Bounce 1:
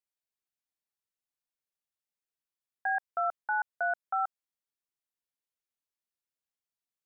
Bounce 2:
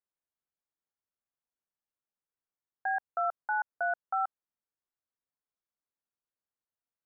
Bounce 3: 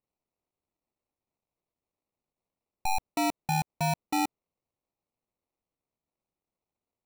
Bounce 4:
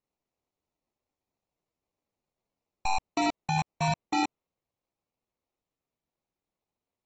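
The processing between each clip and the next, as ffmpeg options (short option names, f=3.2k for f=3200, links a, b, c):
-af "lowpass=f=1.7k:w=0.5412,lowpass=f=1.7k:w=1.3066"
-af "acrusher=samples=27:mix=1:aa=0.000001,volume=3dB"
-ar 48000 -c:a aac -b:a 24k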